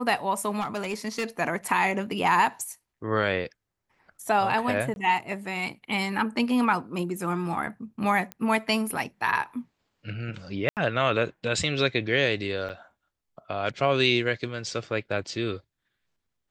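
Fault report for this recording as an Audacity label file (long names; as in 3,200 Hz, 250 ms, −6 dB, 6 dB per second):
0.600000	1.250000	clipping −24.5 dBFS
4.940000	4.960000	drop-out 21 ms
8.320000	8.320000	click −19 dBFS
10.690000	10.770000	drop-out 78 ms
12.690000	12.700000	drop-out 7.7 ms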